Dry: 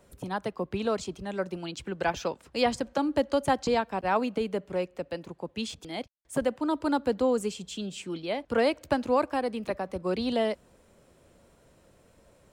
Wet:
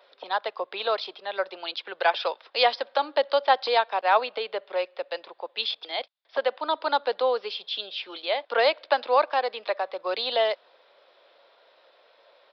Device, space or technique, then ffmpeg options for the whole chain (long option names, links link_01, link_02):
musical greeting card: -af "aresample=11025,aresample=44100,highpass=frequency=550:width=0.5412,highpass=frequency=550:width=1.3066,equalizer=frequency=3600:width_type=o:width=0.23:gain=9.5,volume=6.5dB"